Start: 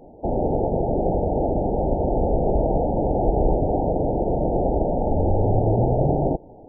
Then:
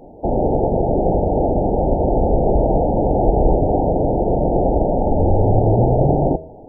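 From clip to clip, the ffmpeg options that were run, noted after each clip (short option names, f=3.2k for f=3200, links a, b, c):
-af "bandreject=f=80.01:t=h:w=4,bandreject=f=160.02:t=h:w=4,bandreject=f=240.03:t=h:w=4,bandreject=f=320.04:t=h:w=4,bandreject=f=400.05:t=h:w=4,bandreject=f=480.06:t=h:w=4,bandreject=f=560.07:t=h:w=4,bandreject=f=640.08:t=h:w=4,volume=5dB"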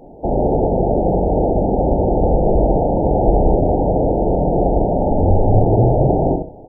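-filter_complex "[0:a]asplit=2[a][b];[b]adelay=66,lowpass=f=880:p=1,volume=-5dB,asplit=2[c][d];[d]adelay=66,lowpass=f=880:p=1,volume=0.26,asplit=2[e][f];[f]adelay=66,lowpass=f=880:p=1,volume=0.26[g];[a][c][e][g]amix=inputs=4:normalize=0"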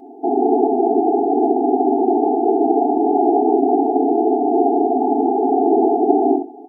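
-af "afftfilt=real='re*eq(mod(floor(b*sr/1024/220),2),1)':imag='im*eq(mod(floor(b*sr/1024/220),2),1)':win_size=1024:overlap=0.75,volume=4.5dB"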